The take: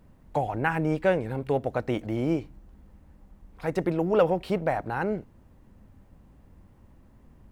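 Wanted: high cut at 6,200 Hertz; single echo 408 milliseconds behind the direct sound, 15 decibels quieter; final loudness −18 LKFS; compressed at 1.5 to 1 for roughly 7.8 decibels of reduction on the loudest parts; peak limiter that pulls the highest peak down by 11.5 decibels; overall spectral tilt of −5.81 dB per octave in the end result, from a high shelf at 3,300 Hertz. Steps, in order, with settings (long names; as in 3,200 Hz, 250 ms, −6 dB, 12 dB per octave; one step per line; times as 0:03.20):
low-pass filter 6,200 Hz
high-shelf EQ 3,300 Hz +9 dB
downward compressor 1.5 to 1, threshold −38 dBFS
brickwall limiter −28 dBFS
single-tap delay 408 ms −15 dB
level +21 dB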